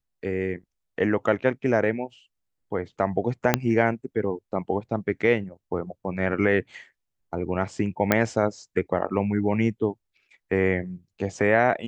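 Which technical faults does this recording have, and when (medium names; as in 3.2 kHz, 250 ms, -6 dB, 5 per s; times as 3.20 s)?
3.54 s: pop -2 dBFS
8.12 s: pop -5 dBFS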